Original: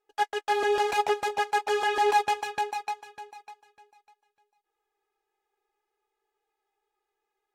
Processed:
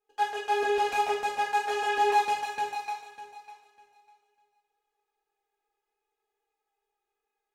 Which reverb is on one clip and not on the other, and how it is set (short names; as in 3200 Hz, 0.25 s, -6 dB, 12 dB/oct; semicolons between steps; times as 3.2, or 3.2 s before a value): two-slope reverb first 0.58 s, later 3.5 s, from -27 dB, DRR -4 dB; gain -7.5 dB